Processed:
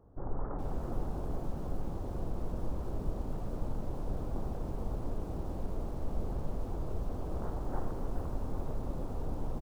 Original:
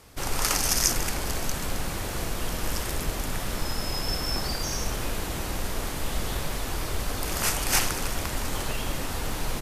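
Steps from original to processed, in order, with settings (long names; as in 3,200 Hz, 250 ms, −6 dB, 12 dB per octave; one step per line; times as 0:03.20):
Gaussian smoothing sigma 9.7 samples
single-tap delay 316 ms −21 dB
feedback echo at a low word length 422 ms, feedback 35%, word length 8 bits, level −8 dB
level −5 dB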